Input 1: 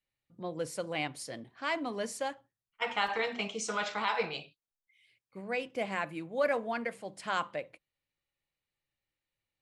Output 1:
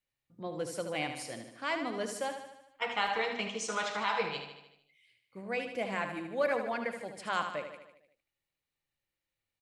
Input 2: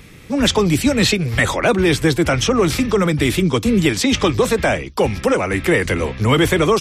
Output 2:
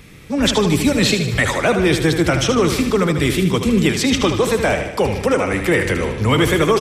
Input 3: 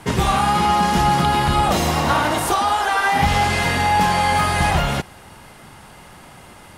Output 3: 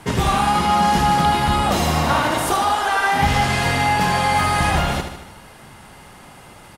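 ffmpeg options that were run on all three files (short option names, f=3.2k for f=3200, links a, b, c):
-af "aecho=1:1:76|152|228|304|380|456|532:0.398|0.227|0.129|0.0737|0.042|0.024|0.0137,volume=-1dB"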